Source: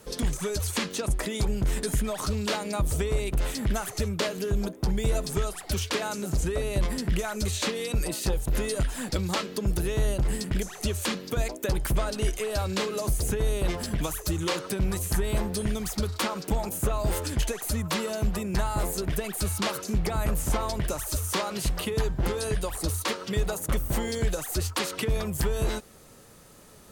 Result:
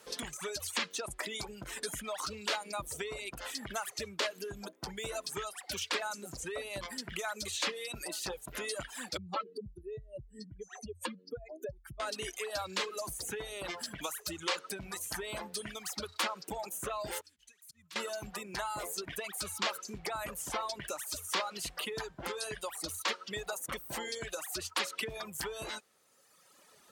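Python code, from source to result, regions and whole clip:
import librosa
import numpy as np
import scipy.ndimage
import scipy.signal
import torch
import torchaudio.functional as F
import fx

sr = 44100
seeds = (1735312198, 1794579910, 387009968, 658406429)

y = fx.chain(x, sr, fx.spec_expand(power=2.4),
    fx.band_squash(depth_pct=40), at=(9.17, 12.0))
y = fx.chain(y, sr, fx.tone_stack(knobs='6-0-2'),
    fx.auto_swell(attack_ms=105.0), at=(17.21, 17.96))
y = fx.dereverb_blind(y, sr, rt60_s=1.6)
y = fx.highpass(y, sr, hz=1100.0, slope=6)
y = fx.high_shelf(y, sr, hz=7500.0, db=-8.5)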